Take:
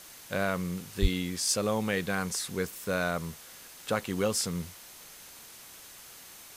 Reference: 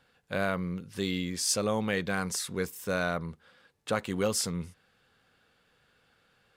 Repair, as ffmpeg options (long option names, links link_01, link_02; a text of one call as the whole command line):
ffmpeg -i in.wav -filter_complex "[0:a]bandreject=frequency=6300:width=30,asplit=3[link_01][link_02][link_03];[link_01]afade=type=out:start_time=1.01:duration=0.02[link_04];[link_02]highpass=frequency=140:width=0.5412,highpass=frequency=140:width=1.3066,afade=type=in:start_time=1.01:duration=0.02,afade=type=out:start_time=1.13:duration=0.02[link_05];[link_03]afade=type=in:start_time=1.13:duration=0.02[link_06];[link_04][link_05][link_06]amix=inputs=3:normalize=0,afwtdn=0.004" out.wav